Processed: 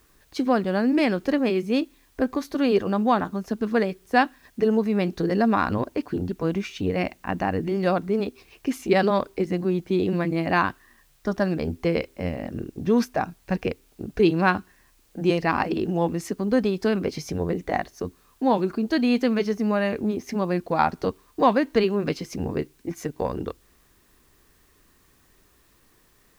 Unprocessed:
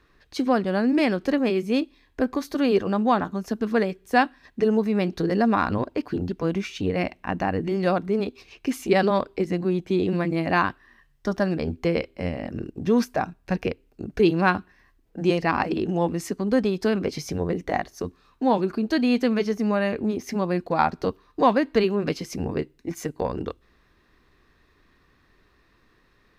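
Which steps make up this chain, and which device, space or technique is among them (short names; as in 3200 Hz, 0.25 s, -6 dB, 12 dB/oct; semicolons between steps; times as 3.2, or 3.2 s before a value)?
plain cassette with noise reduction switched in (mismatched tape noise reduction decoder only; wow and flutter 18 cents; white noise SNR 39 dB)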